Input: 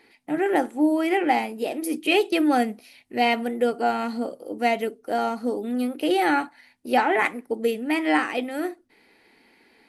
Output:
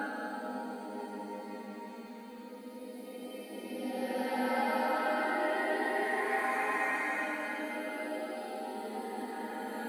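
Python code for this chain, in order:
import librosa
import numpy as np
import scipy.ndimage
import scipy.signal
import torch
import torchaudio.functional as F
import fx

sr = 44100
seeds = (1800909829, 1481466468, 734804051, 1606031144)

p1 = fx.spec_quant(x, sr, step_db=30)
p2 = scipy.signal.sosfilt(scipy.signal.butter(2, 54.0, 'highpass', fs=sr, output='sos'), p1)
p3 = fx.quant_dither(p2, sr, seeds[0], bits=8, dither='triangular')
p4 = p2 + (p3 * 10.0 ** (-11.0 / 20.0))
p5 = fx.resonator_bank(p4, sr, root=56, chord='major', decay_s=0.21)
p6 = fx.echo_swing(p5, sr, ms=1313, ratio=3, feedback_pct=53, wet_db=-7.5)
p7 = fx.paulstretch(p6, sr, seeds[1], factor=8.2, window_s=0.25, from_s=6.41)
y = p7 * 10.0 ** (2.5 / 20.0)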